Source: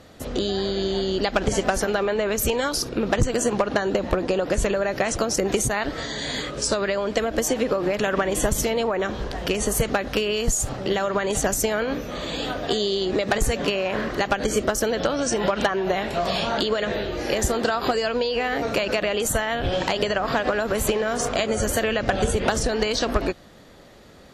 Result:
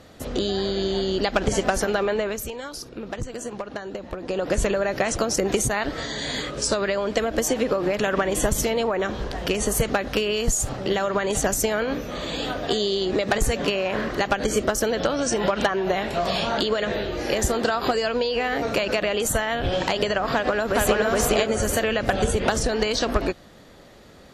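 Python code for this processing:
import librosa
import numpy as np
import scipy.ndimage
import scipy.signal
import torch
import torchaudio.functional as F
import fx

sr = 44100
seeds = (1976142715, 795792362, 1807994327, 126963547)

y = fx.echo_throw(x, sr, start_s=20.33, length_s=0.67, ms=420, feedback_pct=25, wet_db=0.0)
y = fx.edit(y, sr, fx.fade_down_up(start_s=2.15, length_s=2.35, db=-10.5, fade_s=0.31), tone=tone)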